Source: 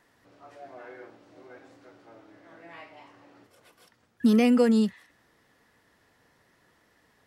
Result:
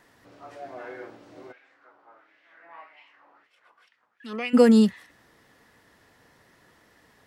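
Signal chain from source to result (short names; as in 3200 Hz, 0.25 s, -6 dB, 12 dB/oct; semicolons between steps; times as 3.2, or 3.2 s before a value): 1.51–4.53 LFO band-pass sine 0.84 Hz -> 4 Hz 980–2700 Hz; gain +5.5 dB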